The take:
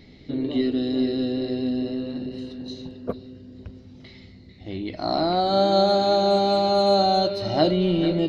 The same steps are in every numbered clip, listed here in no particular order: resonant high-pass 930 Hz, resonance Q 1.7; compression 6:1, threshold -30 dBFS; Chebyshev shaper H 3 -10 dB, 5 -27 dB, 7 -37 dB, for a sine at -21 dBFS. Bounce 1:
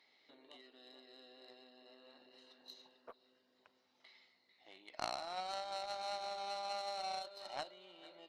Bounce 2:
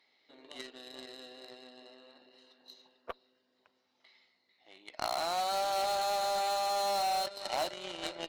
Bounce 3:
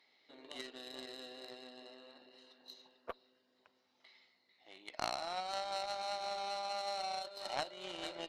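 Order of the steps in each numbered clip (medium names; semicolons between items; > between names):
compression > resonant high-pass > Chebyshev shaper; resonant high-pass > Chebyshev shaper > compression; resonant high-pass > compression > Chebyshev shaper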